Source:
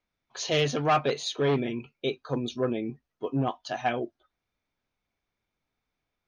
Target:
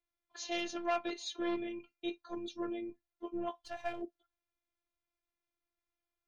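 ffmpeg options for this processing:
-filter_complex "[0:a]asplit=3[s0][s1][s2];[s0]afade=t=out:st=3.61:d=0.02[s3];[s1]aeval=exprs='if(lt(val(0),0),0.447*val(0),val(0))':c=same,afade=t=in:st=3.61:d=0.02,afade=t=out:st=4.01:d=0.02[s4];[s2]afade=t=in:st=4.01:d=0.02[s5];[s3][s4][s5]amix=inputs=3:normalize=0,afftfilt=real='hypot(re,im)*cos(PI*b)':imag='0':win_size=512:overlap=0.75,volume=0.473"

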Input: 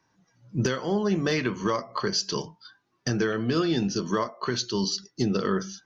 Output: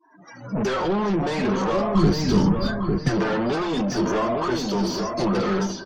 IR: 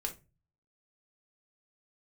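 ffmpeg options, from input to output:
-filter_complex "[0:a]asplit=2[s0][s1];[s1]alimiter=limit=0.0631:level=0:latency=1:release=272,volume=0.841[s2];[s0][s2]amix=inputs=2:normalize=0,asoftclip=type=tanh:threshold=0.0355,flanger=delay=2.9:depth=2.9:regen=30:speed=0.47:shape=sinusoidal,asplit=2[s3][s4];[s4]highpass=f=720:p=1,volume=20,asoftclip=type=tanh:threshold=0.0355[s5];[s3][s5]amix=inputs=2:normalize=0,lowpass=f=1500:p=1,volume=0.501,asettb=1/sr,asplit=3[s6][s7][s8];[s6]atrim=end=3.654[s9];[s7]atrim=start=3.65:end=5.12,asetpts=PTS-STARTPTS,afade=t=in:d=0.004:c=qsin,afade=t=out:st=1.466:d=0.004:c=qsin,bandreject=f=4000:w=13[s10];[s8]atrim=start=5.116[s11];[s9][s10]acrossfade=d=0.004:c1=hsin:c2=qsin[s12];[s12][s11]acrossfade=d=0.004:c1=qsin:c2=hsin,dynaudnorm=f=100:g=5:m=3.98,adynamicequalizer=threshold=0.01:dfrequency=1900:dqfactor=0.93:tfrequency=1900:tqfactor=0.93:attack=5:release=100:ratio=0.375:range=3:mode=cutabove:tftype=bell,asplit=2[s13][s14];[s14]adelay=852,lowpass=f=1700:p=1,volume=0.668,asplit=2[s15][s16];[s16]adelay=852,lowpass=f=1700:p=1,volume=0.33,asplit=2[s17][s18];[s18]adelay=852,lowpass=f=1700:p=1,volume=0.33,asplit=2[s19][s20];[s20]adelay=852,lowpass=f=1700:p=1,volume=0.33[s21];[s15][s17][s19][s21]amix=inputs=4:normalize=0[s22];[s13][s22]amix=inputs=2:normalize=0,asplit=3[s23][s24][s25];[s23]afade=t=out:st=1.94:d=0.02[s26];[s24]asubboost=boost=7.5:cutoff=250,afade=t=in:st=1.94:d=0.02,afade=t=out:st=3.08:d=0.02[s27];[s25]afade=t=in:st=3.08:d=0.02[s28];[s26][s27][s28]amix=inputs=3:normalize=0,afftdn=nr=30:nf=-49"

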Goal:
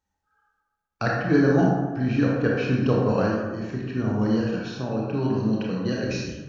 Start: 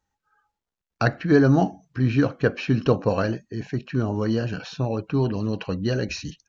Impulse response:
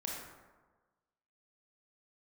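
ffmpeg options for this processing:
-filter_complex "[0:a]asettb=1/sr,asplit=3[s0][s1][s2];[s0]atrim=end=4.414[s3];[s1]atrim=start=4.41:end=6.04,asetpts=PTS-STARTPTS,afade=t=in:d=0.004:c=qsin,afade=t=out:st=1.626:d=0.004:c=qsin,highpass=110[s4];[s2]atrim=start=6.036[s5];[s3][s4]acrossfade=d=0.004:c1=hsin:c2=qsin[s6];[s6][s5]acrossfade=d=0.004:c1=qsin:c2=hsin[s7];[1:a]atrim=start_sample=2205[s8];[s7][s8]afir=irnorm=-1:irlink=0,volume=0.841"

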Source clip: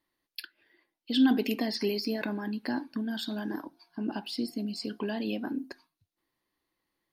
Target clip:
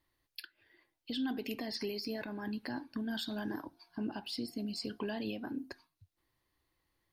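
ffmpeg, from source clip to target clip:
-af "lowshelf=f=140:t=q:w=1.5:g=9.5,alimiter=level_in=1.88:limit=0.0631:level=0:latency=1:release=473,volume=0.531,volume=1.12"

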